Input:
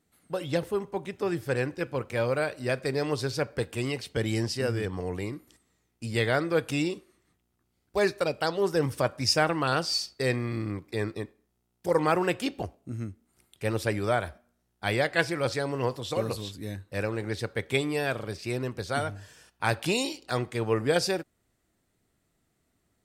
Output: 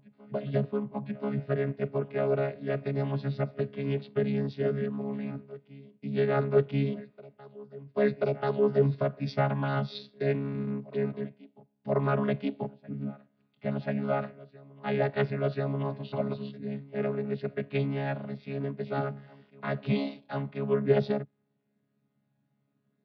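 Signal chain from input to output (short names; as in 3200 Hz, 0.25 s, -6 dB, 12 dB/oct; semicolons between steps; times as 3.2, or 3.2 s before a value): chord vocoder bare fifth, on C#3; steep low-pass 4400 Hz 48 dB/oct; reverse echo 1.035 s -21 dB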